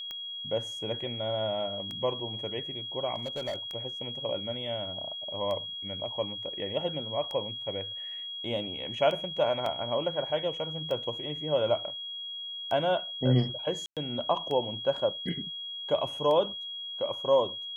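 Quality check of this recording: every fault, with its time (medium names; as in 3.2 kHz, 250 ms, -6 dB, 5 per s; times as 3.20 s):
tick 33 1/3 rpm -24 dBFS
whine 3.3 kHz -36 dBFS
3.16–3.56 s: clipped -29.5 dBFS
9.66 s: dropout 2.9 ms
13.86–13.97 s: dropout 107 ms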